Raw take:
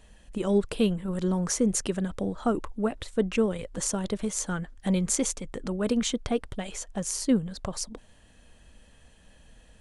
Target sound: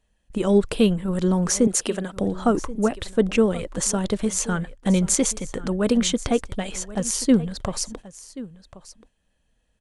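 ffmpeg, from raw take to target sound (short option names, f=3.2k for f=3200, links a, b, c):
-filter_complex "[0:a]agate=range=-21dB:threshold=-43dB:ratio=16:detection=peak,asettb=1/sr,asplit=3[a][b][c];[a]atrim=end=1.674[d];[b]atrim=start=1.67:end=2.17,asetpts=PTS-STARTPTS,afade=t=in:d=0.004:c=qsin,afade=t=out:st=0.496:d=0.004:c=qsin,highpass=290[e];[c]atrim=start=2.166[f];[d][e]acrossfade=d=0.004:c1=hsin:c2=qsin[g];[g][f]acrossfade=d=0.004:c1=qsin:c2=hsin,asplit=2[h][i];[i]aecho=0:1:1081:0.133[j];[h][j]amix=inputs=2:normalize=0,volume=6dB"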